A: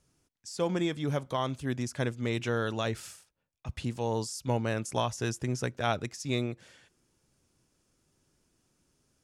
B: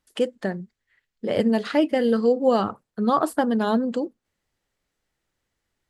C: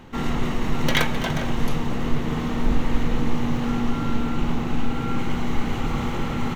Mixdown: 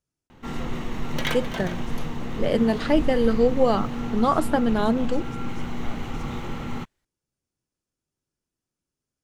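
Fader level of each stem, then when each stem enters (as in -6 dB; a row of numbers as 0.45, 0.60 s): -15.5, -0.5, -6.0 dB; 0.00, 1.15, 0.30 s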